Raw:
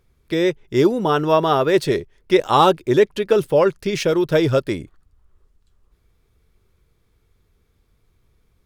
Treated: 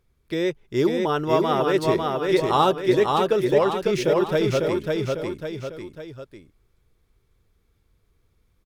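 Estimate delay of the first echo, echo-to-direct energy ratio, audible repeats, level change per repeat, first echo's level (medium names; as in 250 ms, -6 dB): 549 ms, -2.0 dB, 3, -6.5 dB, -3.0 dB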